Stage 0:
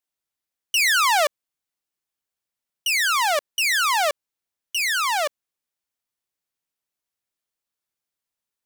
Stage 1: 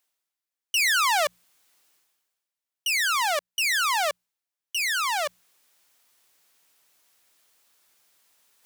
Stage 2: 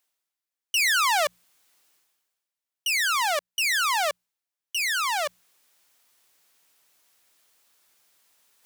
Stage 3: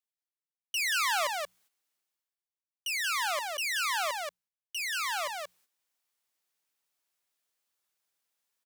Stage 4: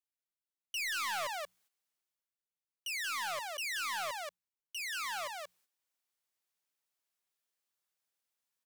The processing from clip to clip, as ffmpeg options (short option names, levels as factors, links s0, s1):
-af "lowshelf=f=290:g=-10,bandreject=f=60:t=h:w=6,bandreject=f=120:t=h:w=6,bandreject=f=180:t=h:w=6,areverse,acompressor=mode=upward:threshold=0.00891:ratio=2.5,areverse,volume=0.708"
-af anull
-af "aecho=1:1:181:0.668,agate=range=0.282:threshold=0.002:ratio=16:detection=peak,volume=0.398"
-af "volume=22.4,asoftclip=hard,volume=0.0447,volume=0.531"